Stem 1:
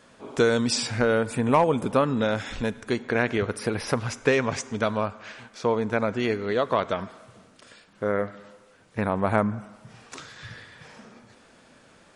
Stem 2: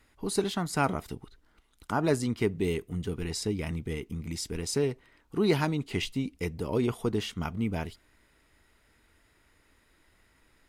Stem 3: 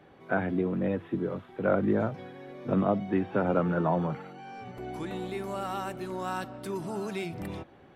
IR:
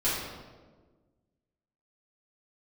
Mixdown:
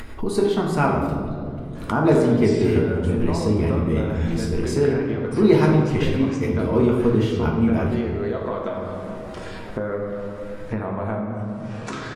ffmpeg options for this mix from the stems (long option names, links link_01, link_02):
-filter_complex "[0:a]acompressor=threshold=-29dB:ratio=6,adelay=1750,volume=-2dB,asplit=2[link_01][link_02];[link_02]volume=-6.5dB[link_03];[1:a]volume=2.5dB,asplit=2[link_04][link_05];[link_05]volume=-5dB[link_06];[2:a]aeval=exprs='val(0)*sin(2*PI*570*n/s)':channel_layout=same,adelay=2400,volume=-18.5dB[link_07];[3:a]atrim=start_sample=2205[link_08];[link_03][link_06]amix=inputs=2:normalize=0[link_09];[link_09][link_08]afir=irnorm=-1:irlink=0[link_10];[link_01][link_04][link_07][link_10]amix=inputs=4:normalize=0,highshelf=frequency=2300:gain=-12,acompressor=mode=upward:threshold=-20dB:ratio=2.5"